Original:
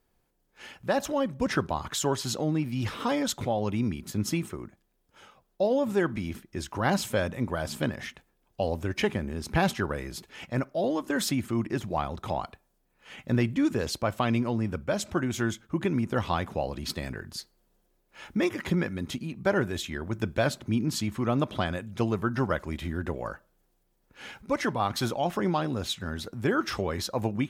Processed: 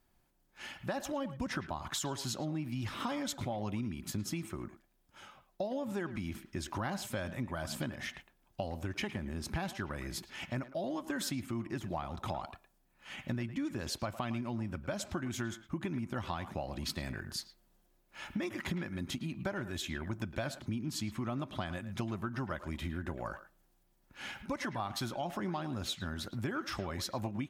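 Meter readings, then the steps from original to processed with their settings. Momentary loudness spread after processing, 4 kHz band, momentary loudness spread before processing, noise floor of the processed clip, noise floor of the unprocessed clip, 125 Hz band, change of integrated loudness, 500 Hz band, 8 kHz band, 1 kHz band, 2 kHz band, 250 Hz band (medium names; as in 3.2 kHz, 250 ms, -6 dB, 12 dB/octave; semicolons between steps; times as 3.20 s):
6 LU, -6.0 dB, 10 LU, -72 dBFS, -72 dBFS, -8.0 dB, -9.0 dB, -11.5 dB, -6.0 dB, -9.0 dB, -8.0 dB, -9.0 dB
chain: peaking EQ 460 Hz -14.5 dB 0.24 oct; compression 6:1, threshold -34 dBFS, peak gain reduction 13.5 dB; speakerphone echo 110 ms, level -12 dB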